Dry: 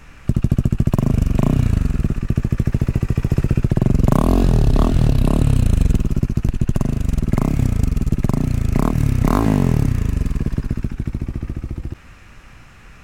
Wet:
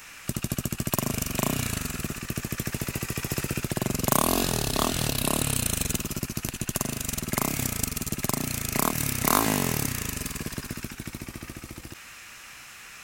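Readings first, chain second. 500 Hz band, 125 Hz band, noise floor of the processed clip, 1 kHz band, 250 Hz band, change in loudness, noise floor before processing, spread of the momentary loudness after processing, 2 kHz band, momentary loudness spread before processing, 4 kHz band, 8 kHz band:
-6.5 dB, -15.5 dB, -46 dBFS, -1.5 dB, -11.0 dB, -8.5 dB, -42 dBFS, 16 LU, +3.0 dB, 9 LU, +7.0 dB, +12.0 dB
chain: tilt EQ +4.5 dB/octave; trim -1.5 dB

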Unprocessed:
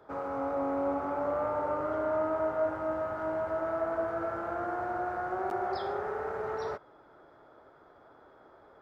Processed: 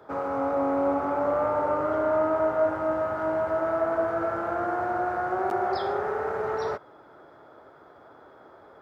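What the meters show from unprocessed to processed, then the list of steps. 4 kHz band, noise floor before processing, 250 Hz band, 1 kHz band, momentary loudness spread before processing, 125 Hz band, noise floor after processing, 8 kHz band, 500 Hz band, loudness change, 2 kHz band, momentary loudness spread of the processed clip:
+6.0 dB, -58 dBFS, +6.0 dB, +6.0 dB, 5 LU, +5.0 dB, -52 dBFS, no reading, +6.0 dB, +6.0 dB, +6.0 dB, 5 LU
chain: high-pass 69 Hz; trim +6 dB

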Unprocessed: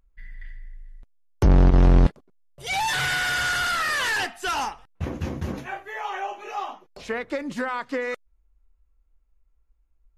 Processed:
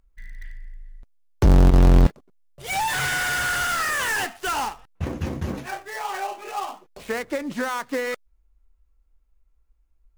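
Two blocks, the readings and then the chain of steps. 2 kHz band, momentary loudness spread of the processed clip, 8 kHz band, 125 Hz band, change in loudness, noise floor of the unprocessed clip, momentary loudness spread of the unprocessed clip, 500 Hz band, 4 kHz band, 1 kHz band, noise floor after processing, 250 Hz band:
0.0 dB, 16 LU, +3.5 dB, +1.5 dB, +1.0 dB, -65 dBFS, 16 LU, +1.5 dB, -2.0 dB, +1.0 dB, -64 dBFS, +1.5 dB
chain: dead-time distortion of 0.093 ms; trim +1.5 dB

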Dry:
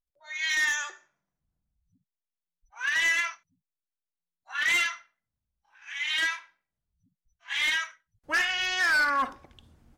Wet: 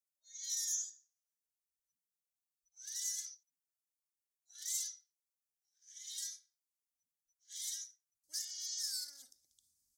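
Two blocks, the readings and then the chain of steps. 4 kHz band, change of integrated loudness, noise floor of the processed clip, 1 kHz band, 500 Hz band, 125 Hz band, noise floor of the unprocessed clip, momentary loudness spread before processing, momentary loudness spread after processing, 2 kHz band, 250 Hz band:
-13.5 dB, -13.5 dB, under -85 dBFS, under -40 dB, under -40 dB, no reading, under -85 dBFS, 15 LU, 17 LU, -39.5 dB, under -35 dB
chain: inverse Chebyshev high-pass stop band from 2.8 kHz, stop band 40 dB; trim +2 dB

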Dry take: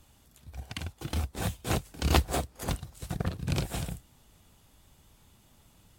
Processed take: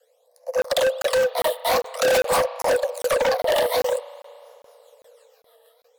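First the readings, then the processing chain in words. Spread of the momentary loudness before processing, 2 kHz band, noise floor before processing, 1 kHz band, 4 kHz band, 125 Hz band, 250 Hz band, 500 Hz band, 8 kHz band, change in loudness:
13 LU, +13.0 dB, -62 dBFS, +12.5 dB, +9.5 dB, -15.0 dB, -5.0 dB, +20.5 dB, +8.5 dB, +11.0 dB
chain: level rider gain up to 8 dB; waveshaping leveller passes 3; in parallel at -1 dB: compression, threshold -20 dBFS, peak gain reduction 12.5 dB; on the sum: rotary cabinet horn 0.85 Hz, later 6.3 Hz, at 3.91 s; phase shifter stages 12, 0.49 Hz, lowest notch 100–3000 Hz; spring tank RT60 2.8 s, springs 36 ms, chirp 75 ms, DRR 17 dB; frequency shift +440 Hz; overload inside the chain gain 16.5 dB; crackling interface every 0.40 s, samples 1024, zero, from 0.62 s

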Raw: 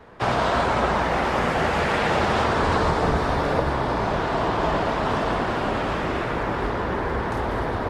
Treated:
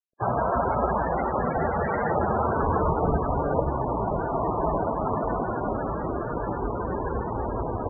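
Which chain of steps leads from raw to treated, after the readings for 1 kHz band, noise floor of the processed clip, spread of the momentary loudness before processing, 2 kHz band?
-3.0 dB, -30 dBFS, 5 LU, -11.0 dB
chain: crossover distortion -36 dBFS; loudest bins only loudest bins 32

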